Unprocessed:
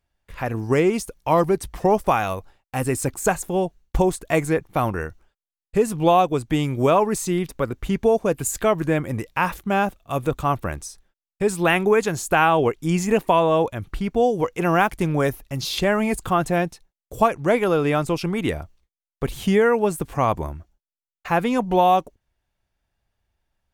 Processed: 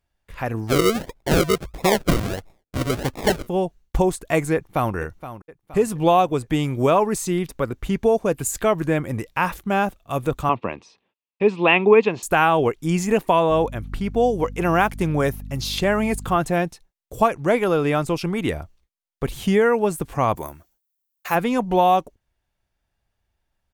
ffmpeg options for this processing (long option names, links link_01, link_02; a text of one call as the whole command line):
ffmpeg -i in.wav -filter_complex "[0:a]asplit=3[link_01][link_02][link_03];[link_01]afade=type=out:start_time=0.67:duration=0.02[link_04];[link_02]acrusher=samples=41:mix=1:aa=0.000001:lfo=1:lforange=24.6:lforate=1.5,afade=type=in:start_time=0.67:duration=0.02,afade=type=out:start_time=3.46:duration=0.02[link_05];[link_03]afade=type=in:start_time=3.46:duration=0.02[link_06];[link_04][link_05][link_06]amix=inputs=3:normalize=0,asplit=2[link_07][link_08];[link_08]afade=type=in:start_time=4.54:duration=0.01,afade=type=out:start_time=4.94:duration=0.01,aecho=0:1:470|940|1410|1880:0.211349|0.095107|0.0427982|0.0192592[link_09];[link_07][link_09]amix=inputs=2:normalize=0,asettb=1/sr,asplit=3[link_10][link_11][link_12];[link_10]atrim=end=10.494[link_13];[link_11]atrim=start=10.49:end=12.23,asetpts=PTS-STARTPTS,afade=type=in:duration=0.004:curve=qsin,afade=type=out:start_time=1.736:duration=0.004:curve=qsin,highpass=frequency=120:width=0.5412,highpass=frequency=120:width=1.3066,equalizer=frequency=150:width_type=q:width=4:gain=-8,equalizer=frequency=230:width_type=q:width=4:gain=5,equalizer=frequency=450:width_type=q:width=4:gain=5,equalizer=frequency=1000:width_type=q:width=4:gain=7,equalizer=frequency=1500:width_type=q:width=4:gain=-9,equalizer=frequency=2600:width_type=q:width=4:gain=9,lowpass=frequency=3900:width=0.5412,lowpass=frequency=3900:width=1.3066[link_14];[link_12]atrim=start=12.226[link_15];[link_13][link_14]acrossfade=duration=0.004:curve1=hsin:curve2=qsin[link_16];[link_16][link_15]acrossfade=duration=0.004:curve1=qsin:curve2=hsin,asettb=1/sr,asplit=3[link_17][link_18][link_19];[link_17]atrim=end=13.504[link_20];[link_18]atrim=start=13.5:end=16.37,asetpts=PTS-STARTPTS,afade=type=in:duration=0.004:curve=qsin,afade=type=out:start_time=2.866:duration=0.004:curve=qsin,aeval=exprs='val(0)+0.0224*(sin(2*PI*50*n/s)+sin(2*PI*2*50*n/s)/2+sin(2*PI*3*50*n/s)/3+sin(2*PI*4*50*n/s)/4+sin(2*PI*5*50*n/s)/5)':channel_layout=same[link_21];[link_19]atrim=start=16.366[link_22];[link_20][link_21]acrossfade=duration=0.004:curve1=hsin:curve2=qsin[link_23];[link_23][link_22]acrossfade=duration=0.004:curve1=qsin:curve2=hsin,asplit=3[link_24][link_25][link_26];[link_24]afade=type=out:start_time=20.35:duration=0.02[link_27];[link_25]aemphasis=mode=production:type=bsi,afade=type=in:start_time=20.35:duration=0.02,afade=type=out:start_time=21.34:duration=0.02[link_28];[link_26]afade=type=in:start_time=21.34:duration=0.02[link_29];[link_27][link_28][link_29]amix=inputs=3:normalize=0" out.wav